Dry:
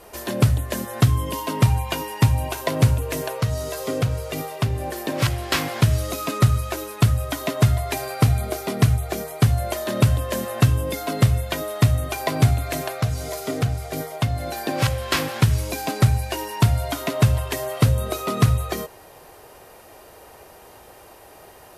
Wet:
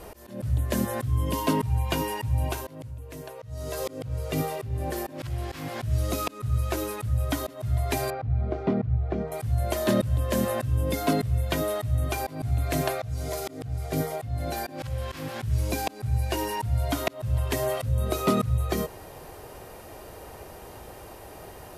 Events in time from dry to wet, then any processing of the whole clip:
0:02.46–0:03.83: duck −14 dB, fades 0.48 s
0:08.10–0:09.32: head-to-tape spacing loss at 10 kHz 42 dB
whole clip: volume swells 477 ms; low-shelf EQ 310 Hz +9 dB

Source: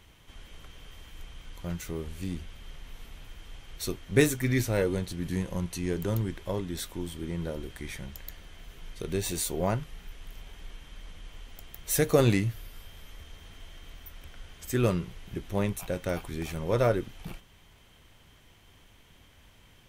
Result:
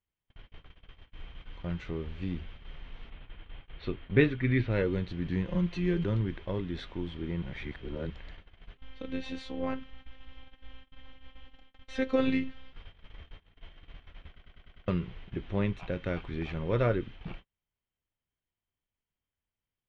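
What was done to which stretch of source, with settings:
0:03.10–0:04.71: low-pass filter 3,900 Hz 24 dB per octave
0:05.48–0:06.04: comb filter 5.7 ms, depth 89%
0:07.42–0:08.10: reverse
0:08.77–0:12.73: phases set to zero 262 Hz
0:14.28: stutter in place 0.10 s, 6 plays
whole clip: noise gate −44 dBFS, range −35 dB; low-pass filter 3,400 Hz 24 dB per octave; dynamic equaliser 740 Hz, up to −7 dB, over −43 dBFS, Q 1.4

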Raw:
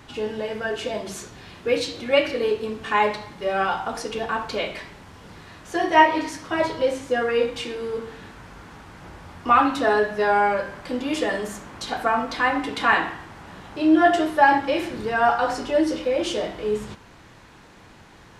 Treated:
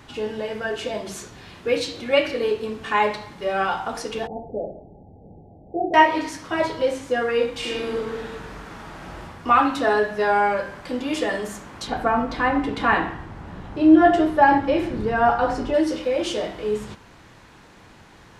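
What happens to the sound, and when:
0:04.27–0:05.94: Chebyshev low-pass filter 830 Hz, order 8
0:07.58–0:09.23: thrown reverb, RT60 1.1 s, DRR −4 dB
0:11.87–0:15.74: spectral tilt −2.5 dB per octave

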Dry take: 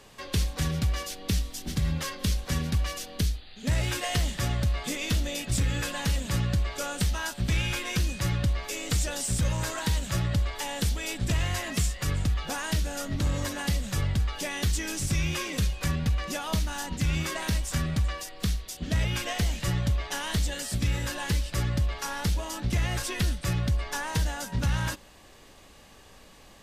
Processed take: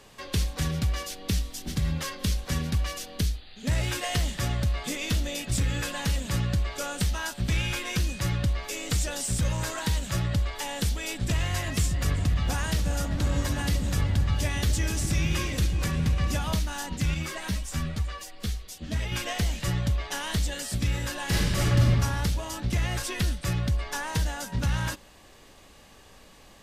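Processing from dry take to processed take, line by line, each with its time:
0:11.40–0:16.53: echo whose low-pass opens from repeat to repeat 136 ms, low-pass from 200 Hz, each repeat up 1 octave, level −3 dB
0:17.14–0:19.12: string-ensemble chorus
0:21.25–0:21.90: thrown reverb, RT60 1.2 s, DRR −6 dB

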